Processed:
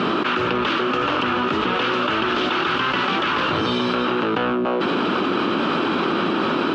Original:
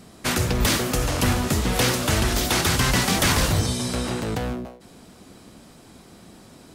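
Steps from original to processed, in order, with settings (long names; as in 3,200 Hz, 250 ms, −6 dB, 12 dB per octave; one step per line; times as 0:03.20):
loudspeaker in its box 340–3,000 Hz, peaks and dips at 340 Hz +4 dB, 490 Hz −4 dB, 700 Hz −9 dB, 1,300 Hz +7 dB, 2,000 Hz −9 dB, 2,900 Hz +4 dB
envelope flattener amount 100%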